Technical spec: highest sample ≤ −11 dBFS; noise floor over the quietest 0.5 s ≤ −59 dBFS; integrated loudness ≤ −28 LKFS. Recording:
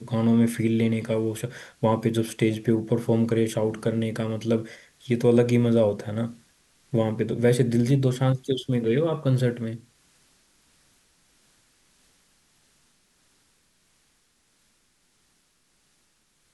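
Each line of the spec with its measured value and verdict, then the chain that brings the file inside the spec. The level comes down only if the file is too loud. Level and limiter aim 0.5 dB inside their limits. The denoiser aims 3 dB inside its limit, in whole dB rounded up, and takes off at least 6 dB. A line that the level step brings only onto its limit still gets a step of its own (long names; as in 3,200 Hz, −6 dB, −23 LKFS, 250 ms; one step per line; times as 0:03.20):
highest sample −7.0 dBFS: out of spec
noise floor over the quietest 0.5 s −67 dBFS: in spec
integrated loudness −24.0 LKFS: out of spec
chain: level −4.5 dB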